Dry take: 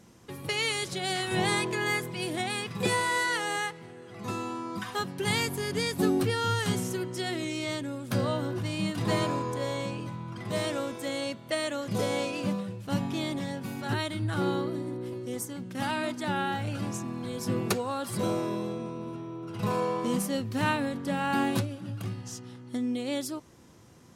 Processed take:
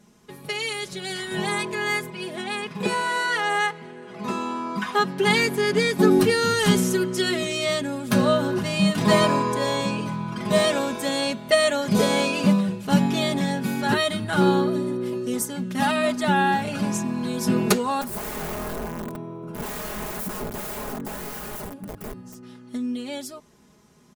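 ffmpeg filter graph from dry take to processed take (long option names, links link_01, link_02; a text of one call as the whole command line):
ffmpeg -i in.wav -filter_complex "[0:a]asettb=1/sr,asplit=3[link_01][link_02][link_03];[link_01]atrim=end=2.104[link_04];[link_02]atrim=start=2.1:end=6.11,asetpts=PTS-STARTPTS,afade=type=in:duration=0.004:curve=qsin,afade=type=out:start_time=4.006:duration=0.004:curve=qsin,highpass=frequency=190:poles=1,aemphasis=mode=reproduction:type=cd[link_05];[link_03]atrim=start=6.106[link_06];[link_04][link_05]acrossfade=duration=0.004:curve1=hsin:curve2=qsin[link_07];[link_07][link_06]acrossfade=duration=0.004:curve1=qsin:curve2=hsin,asettb=1/sr,asplit=3[link_08][link_09][link_10];[link_08]atrim=end=18.014[link_11];[link_09]atrim=start=18.01:end=22.43,asetpts=PTS-STARTPTS,afade=type=in:duration=0.004:curve=qsin,afade=type=out:start_time=4.416:duration=0.004:curve=qsin,aeval=exprs='(mod(31.6*val(0)+1,2)-1)/31.6':channel_layout=same,equalizer=frequency=3900:width_type=o:width=2.8:gain=-14.5[link_12];[link_10]atrim=start=22.426[link_13];[link_11][link_12]acrossfade=duration=0.004:curve1=hsin:curve2=qsin[link_14];[link_14][link_13]acrossfade=duration=0.004:curve1=qsin:curve2=hsin,aecho=1:1:4.8:0.77,dynaudnorm=framelen=300:gausssize=21:maxgain=11.5dB,volume=-2.5dB" out.wav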